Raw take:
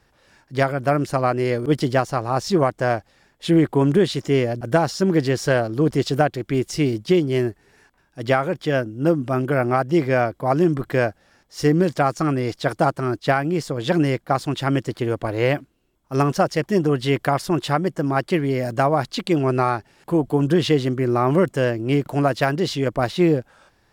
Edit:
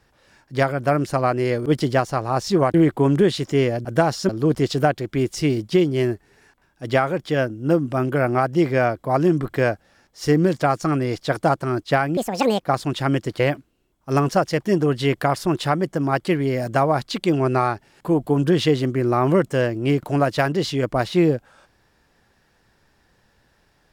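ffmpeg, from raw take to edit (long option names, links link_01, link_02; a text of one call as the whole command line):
ffmpeg -i in.wav -filter_complex "[0:a]asplit=6[link_01][link_02][link_03][link_04][link_05][link_06];[link_01]atrim=end=2.742[link_07];[link_02]atrim=start=3.498:end=5.052[link_08];[link_03]atrim=start=5.648:end=13.534[link_09];[link_04]atrim=start=13.53:end=14.26,asetpts=PTS-STARTPTS,asetrate=67473,aresample=44100,atrim=end_sample=21041,asetpts=PTS-STARTPTS[link_10];[link_05]atrim=start=14.256:end=15.012[link_11];[link_06]atrim=start=15.428[link_12];[link_07][link_08]acrossfade=duration=0.004:curve1=hsin:curve2=hsin[link_13];[link_13][link_09]acrossfade=duration=0.004:curve1=hsin:curve2=hsin[link_14];[link_14][link_10]acrossfade=duration=0.004:curve1=hsin:curve2=hsin[link_15];[link_15][link_11]acrossfade=duration=0.004:curve1=hsin:curve2=hsin[link_16];[link_16][link_12]acrossfade=duration=0.004:curve1=hsin:curve2=hsin" out.wav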